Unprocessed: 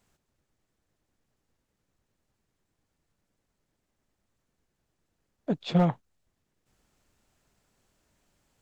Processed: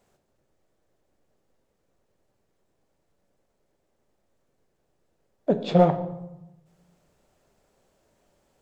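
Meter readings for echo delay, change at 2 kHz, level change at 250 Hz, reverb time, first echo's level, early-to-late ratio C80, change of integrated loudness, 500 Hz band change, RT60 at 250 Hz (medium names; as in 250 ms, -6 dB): no echo, +2.0 dB, +3.0 dB, 0.90 s, no echo, 14.0 dB, +4.0 dB, +10.5 dB, 1.1 s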